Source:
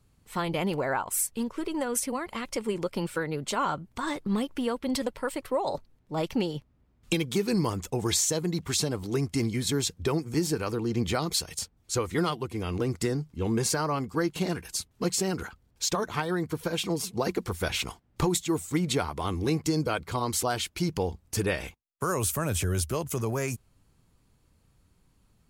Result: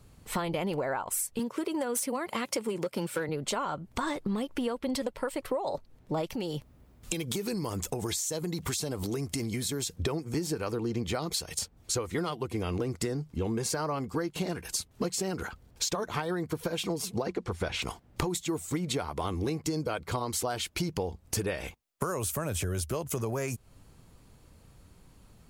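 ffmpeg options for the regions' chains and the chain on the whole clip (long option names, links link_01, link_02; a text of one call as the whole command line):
ffmpeg -i in.wav -filter_complex "[0:a]asettb=1/sr,asplit=3[link_01][link_02][link_03];[link_01]atrim=end=1.394[link_04];[link_02]atrim=start=1.39:end=3.29,asetpts=PTS-STARTPTS,afade=type=in:duration=0.004:curve=qsin,afade=type=out:start_time=1.896:duration=0.004:curve=qsin,highshelf=frequency=8700:gain=6.5,asoftclip=type=hard:threshold=-22.5dB,highpass=frequency=110:width=0.5412,highpass=frequency=110:width=1.3066[link_05];[link_03]atrim=start=3.286[link_06];[link_04][link_05]acrossfade=duration=0.004:curve1=hsin:curve2=qsin[link_07];[link_07][link_06]acrossfade=duration=0.004:curve1=qsin:curve2=hsin,asettb=1/sr,asplit=3[link_08][link_09][link_10];[link_08]atrim=end=6.284[link_11];[link_09]atrim=start=6.28:end=9.96,asetpts=PTS-STARTPTS,afade=type=in:duration=0.004:curve=qsin,afade=type=out:start_time=3.676:duration=0.004:curve=qsin,highshelf=frequency=6600:gain=9,acompressor=threshold=-35dB:ratio=3:attack=3.2:release=140:knee=1:detection=peak[link_12];[link_10]atrim=start=9.956[link_13];[link_11][link_12]acrossfade=duration=0.004:curve1=hsin:curve2=qsin[link_14];[link_14][link_13]acrossfade=duration=0.004:curve1=qsin:curve2=hsin,asettb=1/sr,asplit=3[link_15][link_16][link_17];[link_15]atrim=end=17.224[link_18];[link_16]atrim=start=17.22:end=17.82,asetpts=PTS-STARTPTS,afade=type=in:duration=0.004:curve=qsin,afade=type=out:start_time=0.596:duration=0.004:curve=qsin,lowpass=9300,highshelf=frequency=5000:gain=-8[link_19];[link_17]atrim=start=17.816[link_20];[link_18][link_19]acrossfade=duration=0.004:curve1=hsin:curve2=qsin[link_21];[link_21][link_20]acrossfade=duration=0.004:curve1=qsin:curve2=hsin,equalizer=frequency=580:width=1.4:gain=3.5,acompressor=threshold=-38dB:ratio=6,volume=8.5dB" out.wav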